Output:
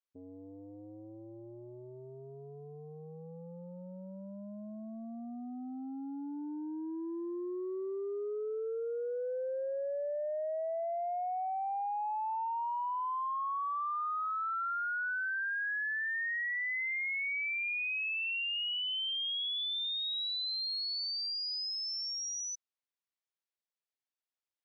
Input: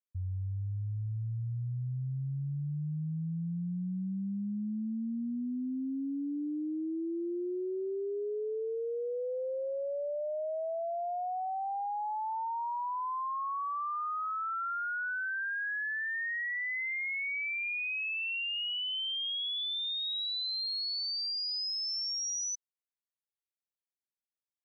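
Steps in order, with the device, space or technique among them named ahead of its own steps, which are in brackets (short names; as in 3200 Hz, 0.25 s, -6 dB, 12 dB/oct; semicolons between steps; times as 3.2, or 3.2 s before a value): public-address speaker with an overloaded transformer (core saturation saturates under 170 Hz; BPF 340–5500 Hz)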